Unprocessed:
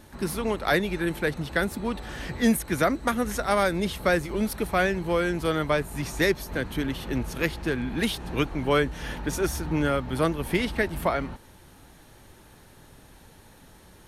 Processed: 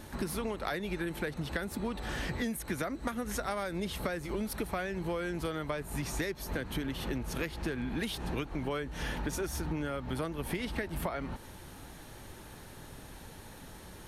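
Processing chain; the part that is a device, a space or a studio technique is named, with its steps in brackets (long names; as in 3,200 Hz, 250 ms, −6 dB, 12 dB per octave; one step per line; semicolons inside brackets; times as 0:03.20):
serial compression, leveller first (downward compressor 2 to 1, threshold −25 dBFS, peak gain reduction 5 dB; downward compressor, threshold −35 dBFS, peak gain reduction 13 dB)
level +3 dB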